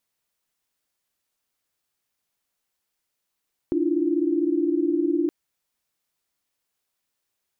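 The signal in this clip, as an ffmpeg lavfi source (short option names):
-f lavfi -i "aevalsrc='0.0631*(sin(2*PI*293.66*t)+sin(2*PI*329.63*t)+sin(2*PI*349.23*t))':d=1.57:s=44100"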